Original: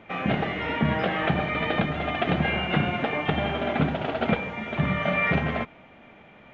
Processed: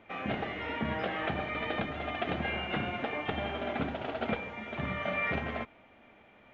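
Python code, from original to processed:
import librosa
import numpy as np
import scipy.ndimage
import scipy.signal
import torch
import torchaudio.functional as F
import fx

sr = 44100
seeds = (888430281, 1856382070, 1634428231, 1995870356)

y = fx.peak_eq(x, sr, hz=160.0, db=-10.5, octaves=0.38)
y = y * librosa.db_to_amplitude(-7.5)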